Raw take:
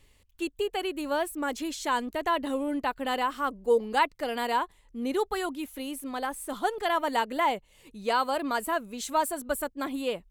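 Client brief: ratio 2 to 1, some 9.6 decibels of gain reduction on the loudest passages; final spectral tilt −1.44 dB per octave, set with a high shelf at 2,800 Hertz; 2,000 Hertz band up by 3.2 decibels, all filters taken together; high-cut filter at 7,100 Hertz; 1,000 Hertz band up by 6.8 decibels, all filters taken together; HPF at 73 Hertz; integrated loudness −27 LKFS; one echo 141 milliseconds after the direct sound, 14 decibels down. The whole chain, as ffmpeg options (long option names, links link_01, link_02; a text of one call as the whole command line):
ffmpeg -i in.wav -af "highpass=73,lowpass=7100,equalizer=frequency=1000:width_type=o:gain=8,equalizer=frequency=2000:width_type=o:gain=4,highshelf=frequency=2800:gain=-8.5,acompressor=threshold=-31dB:ratio=2,aecho=1:1:141:0.2,volume=4.5dB" out.wav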